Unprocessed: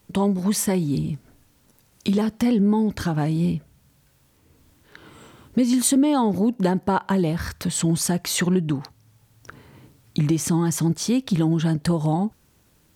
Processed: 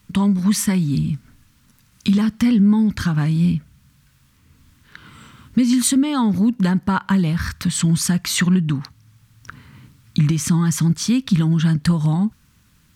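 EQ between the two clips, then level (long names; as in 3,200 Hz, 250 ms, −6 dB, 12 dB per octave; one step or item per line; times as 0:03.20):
flat-topped bell 520 Hz −13 dB
high-shelf EQ 6,900 Hz −6 dB
+5.5 dB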